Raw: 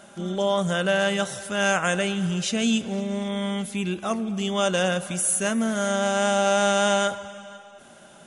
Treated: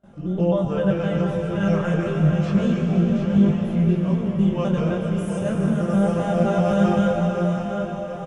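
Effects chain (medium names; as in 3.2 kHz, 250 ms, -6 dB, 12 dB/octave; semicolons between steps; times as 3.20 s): pitch shift switched off and on -2.5 st, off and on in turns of 129 ms; RIAA curve playback; gate with hold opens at -38 dBFS; tilt shelf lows +3 dB, about 1.1 kHz; feedback delay 727 ms, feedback 45%, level -8 dB; reverberation RT60 5.4 s, pre-delay 91 ms, DRR 1.5 dB; detune thickener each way 10 cents; trim -2.5 dB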